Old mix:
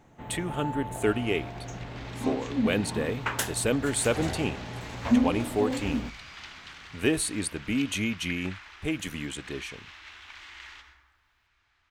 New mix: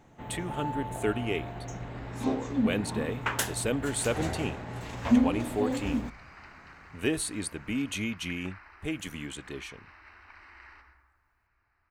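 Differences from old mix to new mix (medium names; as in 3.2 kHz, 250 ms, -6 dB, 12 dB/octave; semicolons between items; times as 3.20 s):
speech -3.5 dB; second sound: add boxcar filter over 13 samples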